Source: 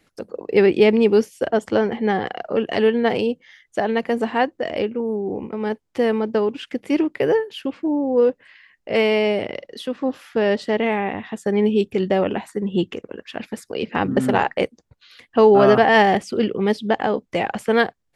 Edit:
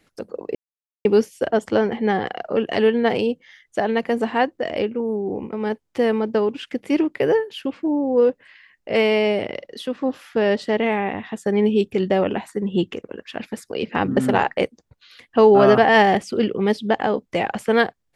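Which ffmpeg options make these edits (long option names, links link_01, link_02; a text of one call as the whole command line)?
ffmpeg -i in.wav -filter_complex "[0:a]asplit=3[link_01][link_02][link_03];[link_01]atrim=end=0.55,asetpts=PTS-STARTPTS,afade=type=out:start_time=0.546:duration=0.004:curve=hsin[link_04];[link_02]atrim=start=0.55:end=1.05,asetpts=PTS-STARTPTS,volume=0[link_05];[link_03]atrim=start=1.05,asetpts=PTS-STARTPTS,afade=type=in:duration=0.004:curve=hsin[link_06];[link_04][link_05][link_06]concat=n=3:v=0:a=1" out.wav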